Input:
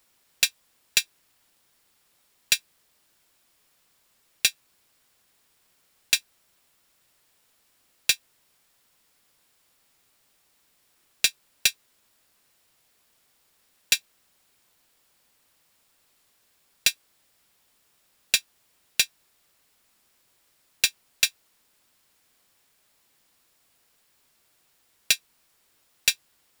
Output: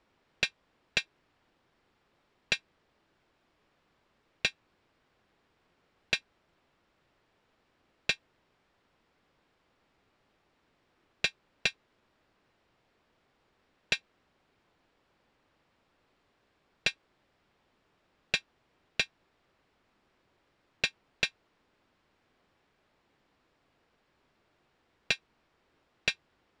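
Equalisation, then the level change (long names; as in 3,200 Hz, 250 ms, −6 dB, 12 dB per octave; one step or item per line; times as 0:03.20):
head-to-tape spacing loss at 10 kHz 34 dB
parametric band 350 Hz +2.5 dB 0.77 octaves
+4.5 dB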